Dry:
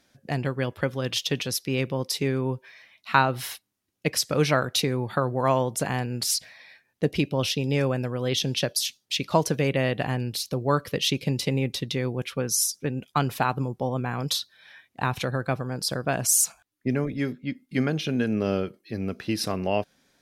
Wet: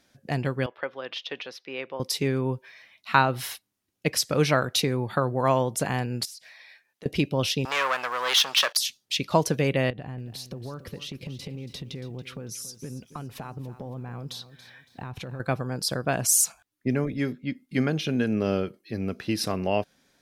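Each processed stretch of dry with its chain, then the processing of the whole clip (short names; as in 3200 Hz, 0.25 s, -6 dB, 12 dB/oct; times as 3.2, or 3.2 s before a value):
0.66–2 HPF 580 Hz + air absorption 300 m
6.25–7.06 HPF 760 Hz 6 dB/oct + compressor 10:1, threshold -40 dBFS
7.65–8.77 high shelf 9000 Hz -11 dB + sample leveller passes 3 + resonant high-pass 1100 Hz, resonance Q 1.6
9.9–15.4 tilt -2 dB/oct + compressor 12:1, threshold -33 dBFS + lo-fi delay 0.28 s, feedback 35%, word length 10-bit, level -14 dB
whole clip: dry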